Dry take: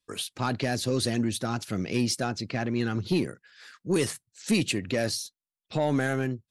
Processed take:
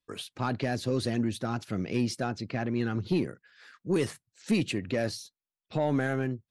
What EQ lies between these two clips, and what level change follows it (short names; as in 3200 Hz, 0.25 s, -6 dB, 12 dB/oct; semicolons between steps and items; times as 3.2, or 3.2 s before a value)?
high shelf 4000 Hz -10.5 dB; -1.5 dB